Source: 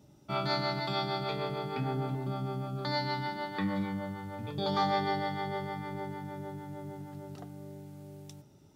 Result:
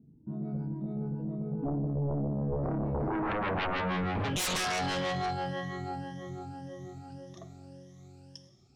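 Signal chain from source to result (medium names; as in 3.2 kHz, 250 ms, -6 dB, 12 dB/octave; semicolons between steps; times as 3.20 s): drifting ripple filter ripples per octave 1.2, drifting +1.9 Hz, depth 16 dB; Doppler pass-by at 3.47 s, 26 m/s, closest 2.4 m; bass shelf 91 Hz +3 dB; compression 10:1, threshold -45 dBFS, peak gain reduction 17 dB; low-pass sweep 250 Hz -> 6 kHz, 2.97–4.75 s; reverberation RT60 1.2 s, pre-delay 38 ms, DRR 12.5 dB; sine folder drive 15 dB, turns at -35.5 dBFS; trim +7.5 dB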